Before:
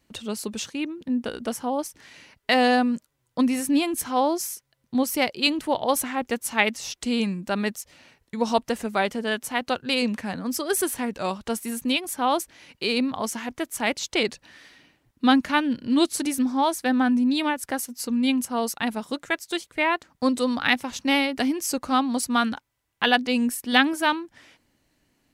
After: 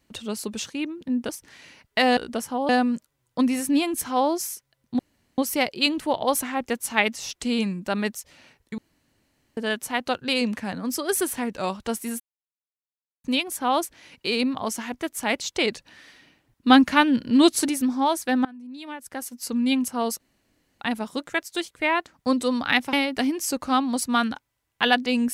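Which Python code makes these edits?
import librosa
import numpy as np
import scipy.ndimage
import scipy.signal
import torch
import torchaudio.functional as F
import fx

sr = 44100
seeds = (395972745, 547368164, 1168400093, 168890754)

y = fx.edit(x, sr, fx.move(start_s=1.29, length_s=0.52, to_s=2.69),
    fx.insert_room_tone(at_s=4.99, length_s=0.39),
    fx.room_tone_fill(start_s=8.39, length_s=0.79),
    fx.insert_silence(at_s=11.81, length_s=1.04),
    fx.clip_gain(start_s=15.27, length_s=0.99, db=4.0),
    fx.fade_in_from(start_s=17.02, length_s=1.04, curve='qua', floor_db=-22.5),
    fx.insert_room_tone(at_s=18.77, length_s=0.61),
    fx.cut(start_s=20.89, length_s=0.25), tone=tone)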